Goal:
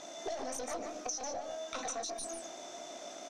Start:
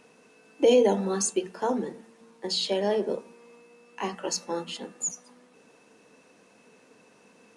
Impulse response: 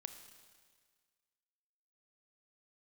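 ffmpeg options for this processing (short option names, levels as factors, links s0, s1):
-filter_complex "[0:a]asplit=2[s0][s1];[s1]adelay=49,volume=0.562[s2];[s0][s2]amix=inputs=2:normalize=0,aeval=exprs='(tanh(20*val(0)+0.5)-tanh(0.5))/20':c=same,alimiter=level_in=3.16:limit=0.0631:level=0:latency=1:release=123,volume=0.316,equalizer=f=520:w=4:g=10,atempo=1.7,lowpass=f=4500:t=q:w=8.7,acompressor=threshold=0.00708:ratio=12,asplit=2[s3][s4];[s4]aecho=0:1:199:0.501[s5];[s3][s5]amix=inputs=2:normalize=0,asetrate=59535,aresample=44100,volume=2.24"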